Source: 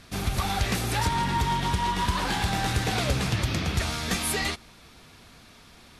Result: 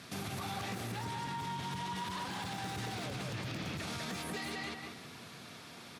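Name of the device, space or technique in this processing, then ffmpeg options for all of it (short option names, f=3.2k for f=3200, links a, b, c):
podcast mastering chain: -filter_complex "[0:a]asplit=3[a][b][c];[a]afade=t=out:st=1:d=0.02[d];[b]equalizer=f=7.1k:w=0.38:g=3,afade=t=in:st=1:d=0.02,afade=t=out:st=3.02:d=0.02[e];[c]afade=t=in:st=3.02:d=0.02[f];[d][e][f]amix=inputs=3:normalize=0,highpass=f=110:w=0.5412,highpass=f=110:w=1.3066,asplit=2[g][h];[h]adelay=189,lowpass=f=3.4k:p=1,volume=-4dB,asplit=2[i][j];[j]adelay=189,lowpass=f=3.4k:p=1,volume=0.26,asplit=2[k][l];[l]adelay=189,lowpass=f=3.4k:p=1,volume=0.26,asplit=2[m][n];[n]adelay=189,lowpass=f=3.4k:p=1,volume=0.26[o];[g][i][k][m][o]amix=inputs=5:normalize=0,deesser=0.7,acompressor=threshold=-36dB:ratio=4,alimiter=level_in=7.5dB:limit=-24dB:level=0:latency=1:release=30,volume=-7.5dB,volume=1dB" -ar 48000 -c:a libmp3lame -b:a 112k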